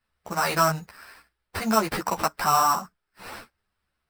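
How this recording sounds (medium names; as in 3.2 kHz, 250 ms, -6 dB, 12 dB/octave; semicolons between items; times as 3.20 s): aliases and images of a low sample rate 6.7 kHz, jitter 0%; a shimmering, thickened sound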